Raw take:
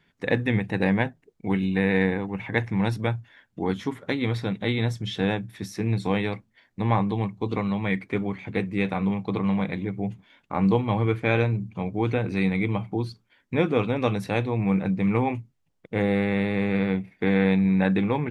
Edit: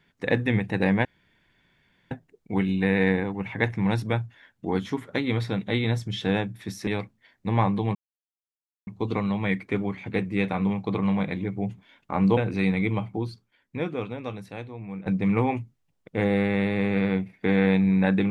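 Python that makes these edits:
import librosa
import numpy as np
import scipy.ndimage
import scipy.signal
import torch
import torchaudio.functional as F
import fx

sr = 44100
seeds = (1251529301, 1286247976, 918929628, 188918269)

y = fx.edit(x, sr, fx.insert_room_tone(at_s=1.05, length_s=1.06),
    fx.cut(start_s=5.81, length_s=0.39),
    fx.insert_silence(at_s=7.28, length_s=0.92),
    fx.cut(start_s=10.78, length_s=1.37),
    fx.fade_out_to(start_s=12.66, length_s=2.18, curve='qua', floor_db=-13.5), tone=tone)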